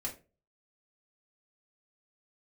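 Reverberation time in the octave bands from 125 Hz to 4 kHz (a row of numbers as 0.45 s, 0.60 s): 0.45 s, 0.35 s, 0.40 s, 0.25 s, 0.25 s, 0.20 s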